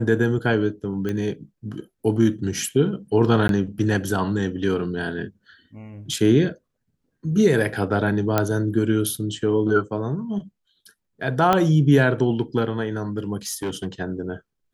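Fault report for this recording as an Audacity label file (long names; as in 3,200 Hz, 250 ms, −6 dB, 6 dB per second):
1.090000	1.090000	click −16 dBFS
3.480000	3.490000	drop-out 12 ms
6.130000	6.130000	drop-out 3.3 ms
8.380000	8.380000	click −5 dBFS
11.530000	11.530000	click −6 dBFS
13.470000	13.880000	clipping −22 dBFS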